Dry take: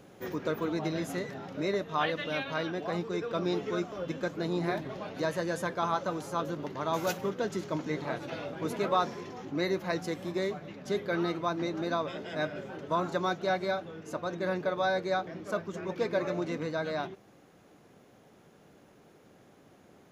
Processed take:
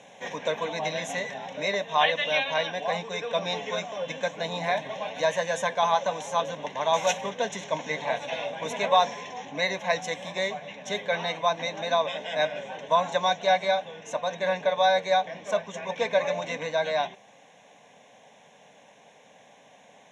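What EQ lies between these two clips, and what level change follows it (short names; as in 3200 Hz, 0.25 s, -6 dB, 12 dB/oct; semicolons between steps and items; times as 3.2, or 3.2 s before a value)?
speaker cabinet 290–7200 Hz, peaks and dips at 1100 Hz +3 dB, 3700 Hz +7 dB, 5700 Hz +7 dB; high shelf 4700 Hz +8.5 dB; fixed phaser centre 1300 Hz, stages 6; +9.0 dB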